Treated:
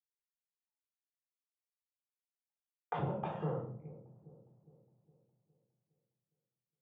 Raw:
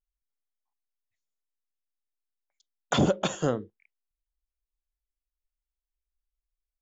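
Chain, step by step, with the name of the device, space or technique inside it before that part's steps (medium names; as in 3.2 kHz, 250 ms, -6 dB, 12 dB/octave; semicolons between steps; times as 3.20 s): gate with hold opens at -49 dBFS; feedback echo behind a low-pass 411 ms, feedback 48%, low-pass 410 Hz, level -24 dB; bass amplifier (compression 5:1, threshold -33 dBFS, peak gain reduction 13.5 dB; cabinet simulation 87–2300 Hz, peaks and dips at 130 Hz +6 dB, 280 Hz -9 dB, 480 Hz +3 dB, 890 Hz +10 dB, 1.5 kHz -6 dB); simulated room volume 670 m³, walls furnished, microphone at 3.8 m; trim -8 dB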